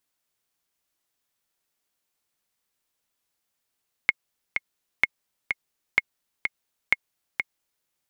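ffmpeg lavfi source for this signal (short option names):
-f lavfi -i "aevalsrc='pow(10,(-4.5-6.5*gte(mod(t,2*60/127),60/127))/20)*sin(2*PI*2160*mod(t,60/127))*exp(-6.91*mod(t,60/127)/0.03)':d=3.77:s=44100"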